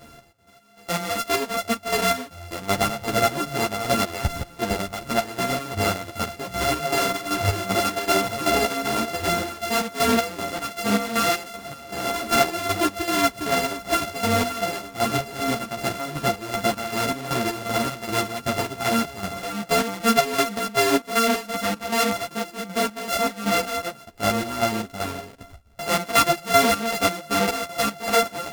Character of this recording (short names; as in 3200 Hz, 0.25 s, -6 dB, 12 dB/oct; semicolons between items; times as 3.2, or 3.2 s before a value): a buzz of ramps at a fixed pitch in blocks of 64 samples; chopped level 2.6 Hz, depth 65%, duty 50%; a shimmering, thickened sound